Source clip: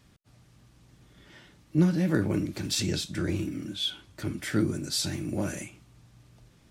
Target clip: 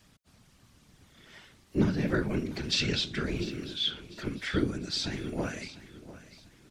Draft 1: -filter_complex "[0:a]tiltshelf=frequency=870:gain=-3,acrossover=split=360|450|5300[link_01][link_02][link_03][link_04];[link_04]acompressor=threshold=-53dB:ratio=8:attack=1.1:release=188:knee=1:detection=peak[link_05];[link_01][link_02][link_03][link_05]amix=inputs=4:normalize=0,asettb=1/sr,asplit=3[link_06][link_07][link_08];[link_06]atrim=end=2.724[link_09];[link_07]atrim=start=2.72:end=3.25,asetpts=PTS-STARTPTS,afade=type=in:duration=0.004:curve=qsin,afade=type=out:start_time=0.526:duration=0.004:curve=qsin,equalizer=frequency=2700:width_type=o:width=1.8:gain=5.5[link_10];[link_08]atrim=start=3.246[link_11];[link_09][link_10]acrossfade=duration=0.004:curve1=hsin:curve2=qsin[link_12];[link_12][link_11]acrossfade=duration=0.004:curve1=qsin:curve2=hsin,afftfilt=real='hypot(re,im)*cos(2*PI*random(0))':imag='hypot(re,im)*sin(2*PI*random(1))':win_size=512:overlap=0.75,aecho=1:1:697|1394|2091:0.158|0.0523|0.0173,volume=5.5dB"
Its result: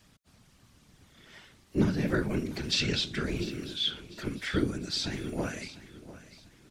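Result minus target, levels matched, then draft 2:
downward compressor: peak gain reduction −6 dB
-filter_complex "[0:a]tiltshelf=frequency=870:gain=-3,acrossover=split=360|450|5300[link_01][link_02][link_03][link_04];[link_04]acompressor=threshold=-60dB:ratio=8:attack=1.1:release=188:knee=1:detection=peak[link_05];[link_01][link_02][link_03][link_05]amix=inputs=4:normalize=0,asettb=1/sr,asplit=3[link_06][link_07][link_08];[link_06]atrim=end=2.724[link_09];[link_07]atrim=start=2.72:end=3.25,asetpts=PTS-STARTPTS,afade=type=in:duration=0.004:curve=qsin,afade=type=out:start_time=0.526:duration=0.004:curve=qsin,equalizer=frequency=2700:width_type=o:width=1.8:gain=5.5[link_10];[link_08]atrim=start=3.246[link_11];[link_09][link_10]acrossfade=duration=0.004:curve1=hsin:curve2=qsin[link_12];[link_12][link_11]acrossfade=duration=0.004:curve1=qsin:curve2=hsin,afftfilt=real='hypot(re,im)*cos(2*PI*random(0))':imag='hypot(re,im)*sin(2*PI*random(1))':win_size=512:overlap=0.75,aecho=1:1:697|1394|2091:0.158|0.0523|0.0173,volume=5.5dB"

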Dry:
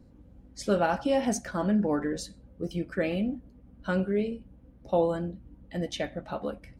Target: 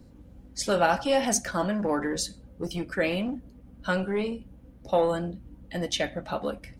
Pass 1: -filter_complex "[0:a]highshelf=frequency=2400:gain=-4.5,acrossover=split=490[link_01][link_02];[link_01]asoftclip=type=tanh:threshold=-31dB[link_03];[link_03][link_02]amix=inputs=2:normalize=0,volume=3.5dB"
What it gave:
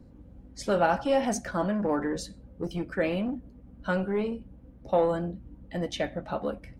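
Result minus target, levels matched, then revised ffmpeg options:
4,000 Hz band −6.5 dB
-filter_complex "[0:a]highshelf=frequency=2400:gain=6.5,acrossover=split=490[link_01][link_02];[link_01]asoftclip=type=tanh:threshold=-31dB[link_03];[link_03][link_02]amix=inputs=2:normalize=0,volume=3.5dB"

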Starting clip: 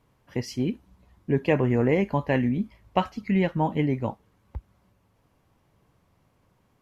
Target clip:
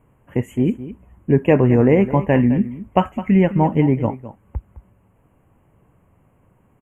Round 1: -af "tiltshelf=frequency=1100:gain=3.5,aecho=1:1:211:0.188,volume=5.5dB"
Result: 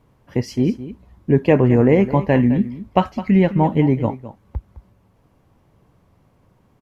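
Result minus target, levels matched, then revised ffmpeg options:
4,000 Hz band +3.0 dB
-af "asuperstop=centerf=4600:order=12:qfactor=1.2,tiltshelf=frequency=1100:gain=3.5,aecho=1:1:211:0.188,volume=5.5dB"

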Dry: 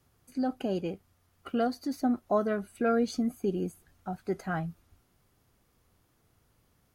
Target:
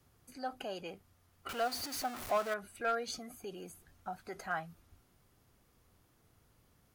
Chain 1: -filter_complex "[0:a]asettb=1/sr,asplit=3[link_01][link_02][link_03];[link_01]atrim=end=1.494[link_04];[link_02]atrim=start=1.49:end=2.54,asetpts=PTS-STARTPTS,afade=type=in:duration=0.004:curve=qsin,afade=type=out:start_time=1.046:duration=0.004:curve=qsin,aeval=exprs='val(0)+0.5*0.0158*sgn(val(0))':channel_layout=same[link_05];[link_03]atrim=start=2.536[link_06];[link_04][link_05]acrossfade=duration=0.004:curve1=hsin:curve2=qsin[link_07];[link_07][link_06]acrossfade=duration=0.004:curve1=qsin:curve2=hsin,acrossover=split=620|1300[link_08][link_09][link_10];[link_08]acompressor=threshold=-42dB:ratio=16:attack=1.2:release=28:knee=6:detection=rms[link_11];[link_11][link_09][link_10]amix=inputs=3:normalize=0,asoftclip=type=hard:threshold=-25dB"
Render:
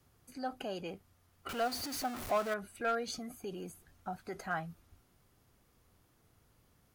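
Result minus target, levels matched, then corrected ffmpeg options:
downward compressor: peak gain reduction −6 dB
-filter_complex "[0:a]asettb=1/sr,asplit=3[link_01][link_02][link_03];[link_01]atrim=end=1.494[link_04];[link_02]atrim=start=1.49:end=2.54,asetpts=PTS-STARTPTS,afade=type=in:duration=0.004:curve=qsin,afade=type=out:start_time=1.046:duration=0.004:curve=qsin,aeval=exprs='val(0)+0.5*0.0158*sgn(val(0))':channel_layout=same[link_05];[link_03]atrim=start=2.536[link_06];[link_04][link_05]acrossfade=duration=0.004:curve1=hsin:curve2=qsin[link_07];[link_07][link_06]acrossfade=duration=0.004:curve1=qsin:curve2=hsin,acrossover=split=620|1300[link_08][link_09][link_10];[link_08]acompressor=threshold=-48.5dB:ratio=16:attack=1.2:release=28:knee=6:detection=rms[link_11];[link_11][link_09][link_10]amix=inputs=3:normalize=0,asoftclip=type=hard:threshold=-25dB"

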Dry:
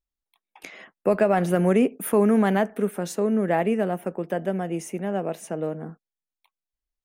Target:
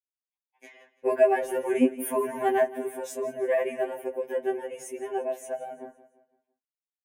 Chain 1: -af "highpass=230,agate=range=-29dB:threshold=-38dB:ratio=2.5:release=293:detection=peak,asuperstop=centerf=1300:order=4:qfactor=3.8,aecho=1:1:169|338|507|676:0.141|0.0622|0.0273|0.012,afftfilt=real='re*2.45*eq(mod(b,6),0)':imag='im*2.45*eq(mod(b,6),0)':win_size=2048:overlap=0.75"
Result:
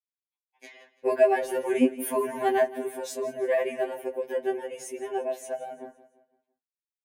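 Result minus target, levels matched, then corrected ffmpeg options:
4,000 Hz band +4.0 dB
-af "highpass=230,equalizer=frequency=4300:width_type=o:width=0.59:gain=-12,agate=range=-29dB:threshold=-38dB:ratio=2.5:release=293:detection=peak,asuperstop=centerf=1300:order=4:qfactor=3.8,aecho=1:1:169|338|507|676:0.141|0.0622|0.0273|0.012,afftfilt=real='re*2.45*eq(mod(b,6),0)':imag='im*2.45*eq(mod(b,6),0)':win_size=2048:overlap=0.75"

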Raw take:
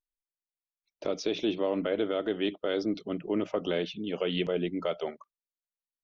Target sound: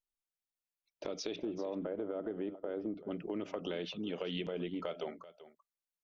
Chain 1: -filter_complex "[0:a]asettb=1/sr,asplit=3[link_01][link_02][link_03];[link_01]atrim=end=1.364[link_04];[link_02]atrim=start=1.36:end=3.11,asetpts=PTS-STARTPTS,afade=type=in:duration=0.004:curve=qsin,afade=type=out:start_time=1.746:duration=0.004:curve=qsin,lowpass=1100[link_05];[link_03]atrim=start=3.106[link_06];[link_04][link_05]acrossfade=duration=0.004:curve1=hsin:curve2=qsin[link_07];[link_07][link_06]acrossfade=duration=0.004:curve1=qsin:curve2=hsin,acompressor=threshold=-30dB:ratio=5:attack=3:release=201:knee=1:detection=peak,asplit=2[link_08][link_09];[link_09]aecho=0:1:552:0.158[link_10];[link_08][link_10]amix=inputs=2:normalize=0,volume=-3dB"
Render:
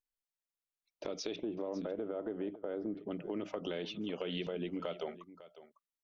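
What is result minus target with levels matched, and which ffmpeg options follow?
echo 166 ms late
-filter_complex "[0:a]asettb=1/sr,asplit=3[link_01][link_02][link_03];[link_01]atrim=end=1.364[link_04];[link_02]atrim=start=1.36:end=3.11,asetpts=PTS-STARTPTS,afade=type=in:duration=0.004:curve=qsin,afade=type=out:start_time=1.746:duration=0.004:curve=qsin,lowpass=1100[link_05];[link_03]atrim=start=3.106[link_06];[link_04][link_05]acrossfade=duration=0.004:curve1=hsin:curve2=qsin[link_07];[link_07][link_06]acrossfade=duration=0.004:curve1=qsin:curve2=hsin,acompressor=threshold=-30dB:ratio=5:attack=3:release=201:knee=1:detection=peak,asplit=2[link_08][link_09];[link_09]aecho=0:1:386:0.158[link_10];[link_08][link_10]amix=inputs=2:normalize=0,volume=-3dB"

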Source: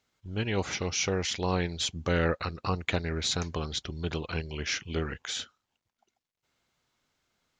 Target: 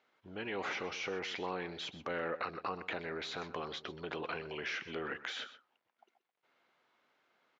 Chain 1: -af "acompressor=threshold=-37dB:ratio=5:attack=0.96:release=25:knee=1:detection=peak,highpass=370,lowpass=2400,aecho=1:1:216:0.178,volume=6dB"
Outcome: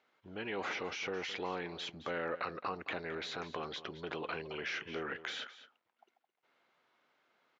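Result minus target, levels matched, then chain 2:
echo 90 ms late
-af "acompressor=threshold=-37dB:ratio=5:attack=0.96:release=25:knee=1:detection=peak,highpass=370,lowpass=2400,aecho=1:1:126:0.178,volume=6dB"

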